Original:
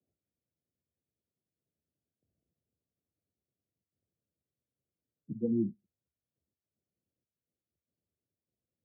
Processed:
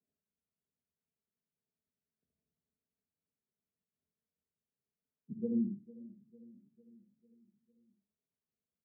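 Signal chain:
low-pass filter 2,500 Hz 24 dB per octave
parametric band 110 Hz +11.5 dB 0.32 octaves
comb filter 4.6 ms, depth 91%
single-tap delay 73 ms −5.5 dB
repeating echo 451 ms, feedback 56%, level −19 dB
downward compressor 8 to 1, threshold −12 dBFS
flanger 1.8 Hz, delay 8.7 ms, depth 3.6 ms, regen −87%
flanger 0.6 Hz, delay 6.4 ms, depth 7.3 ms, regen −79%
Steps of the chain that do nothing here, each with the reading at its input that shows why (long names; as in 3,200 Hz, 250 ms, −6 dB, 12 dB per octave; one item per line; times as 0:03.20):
low-pass filter 2,500 Hz: nothing at its input above 510 Hz
downward compressor, threshold −12 dBFS: peak of its input −16.0 dBFS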